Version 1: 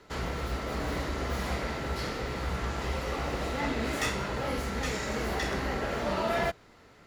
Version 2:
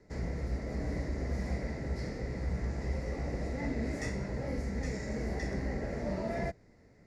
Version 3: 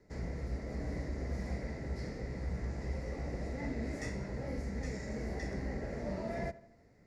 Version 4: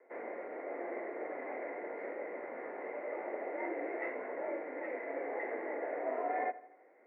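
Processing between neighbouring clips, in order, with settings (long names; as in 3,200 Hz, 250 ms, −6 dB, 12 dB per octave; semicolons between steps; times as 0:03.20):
drawn EQ curve 200 Hz 0 dB, 380 Hz −5 dB, 600 Hz −5 dB, 1,300 Hz −20 dB, 2,000 Hz −6 dB, 3,100 Hz −26 dB, 5,100 Hz −8 dB, 9,100 Hz −13 dB, 16,000 Hz −30 dB
tape delay 77 ms, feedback 56%, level −16.5 dB, low-pass 2,800 Hz; level −3.5 dB
single-sideband voice off tune +63 Hz 320–2,100 Hz; level +5.5 dB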